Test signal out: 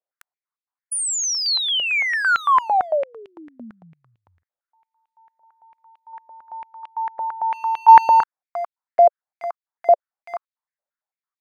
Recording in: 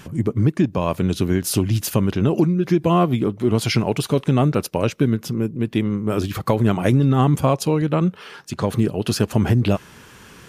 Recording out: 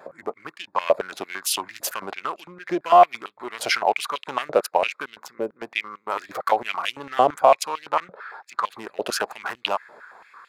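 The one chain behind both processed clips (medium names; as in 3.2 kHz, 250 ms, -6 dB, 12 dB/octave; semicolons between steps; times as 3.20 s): local Wiener filter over 15 samples; vibrato 0.39 Hz 5 cents; step-sequenced high-pass 8.9 Hz 590–2900 Hz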